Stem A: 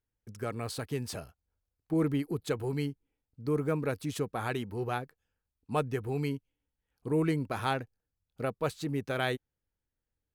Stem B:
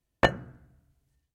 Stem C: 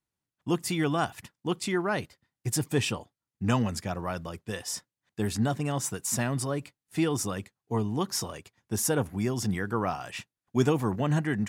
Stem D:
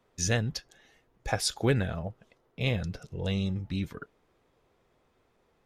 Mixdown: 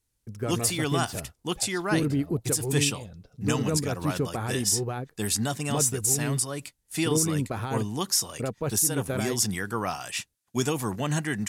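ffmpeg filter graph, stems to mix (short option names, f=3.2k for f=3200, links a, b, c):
-filter_complex "[0:a]alimiter=limit=-23.5dB:level=0:latency=1:release=22,lowshelf=f=490:g=8,volume=0dB[a];[1:a]adelay=450,volume=-15dB[b];[2:a]lowpass=12k,crystalizer=i=5:c=0,volume=-2dB,asplit=2[c][d];[3:a]lowpass=5.2k,equalizer=f=1.9k:t=o:w=0.95:g=-8,adelay=300,volume=-11.5dB[e];[d]apad=whole_len=79323[f];[b][f]sidechaincompress=threshold=-25dB:ratio=8:attack=16:release=390[g];[a][g][c][e]amix=inputs=4:normalize=0,alimiter=limit=-12.5dB:level=0:latency=1:release=237"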